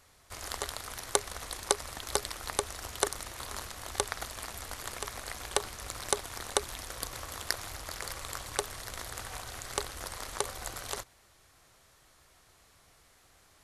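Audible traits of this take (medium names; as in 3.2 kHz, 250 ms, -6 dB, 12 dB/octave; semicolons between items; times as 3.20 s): noise floor -63 dBFS; spectral tilt -2.5 dB/octave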